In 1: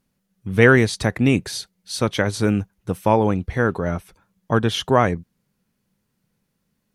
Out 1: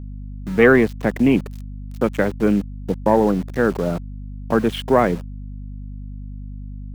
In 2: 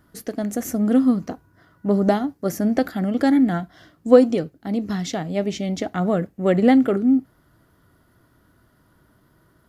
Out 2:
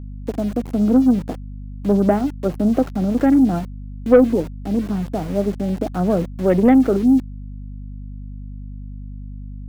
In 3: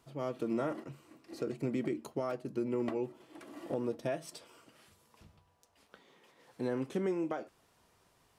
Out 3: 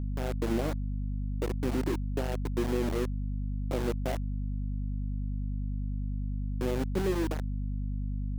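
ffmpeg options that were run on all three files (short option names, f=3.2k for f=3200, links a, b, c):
-filter_complex "[0:a]afwtdn=0.0282,agate=range=-33dB:threshold=-44dB:ratio=3:detection=peak,highpass=f=160:w=0.5412,highpass=f=160:w=1.3066,highshelf=f=3.6k:t=q:w=1.5:g=-7.5,acrossover=split=760[a][b];[a]acontrast=79[c];[c][b]amix=inputs=2:normalize=0,aeval=exprs='val(0)*gte(abs(val(0)),0.0355)':c=same,aeval=exprs='val(0)+0.0398*(sin(2*PI*50*n/s)+sin(2*PI*2*50*n/s)/2+sin(2*PI*3*50*n/s)/3+sin(2*PI*4*50*n/s)/4+sin(2*PI*5*50*n/s)/5)':c=same,volume=-3dB"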